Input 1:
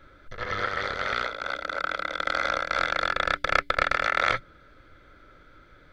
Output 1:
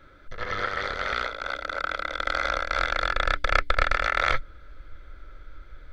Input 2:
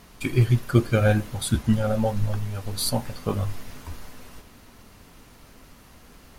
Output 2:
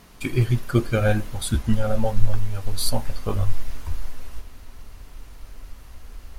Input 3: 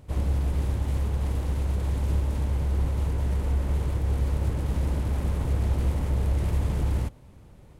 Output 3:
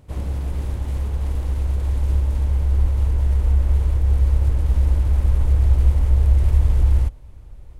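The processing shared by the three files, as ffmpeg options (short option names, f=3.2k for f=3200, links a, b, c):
-af "asubboost=boost=8.5:cutoff=58"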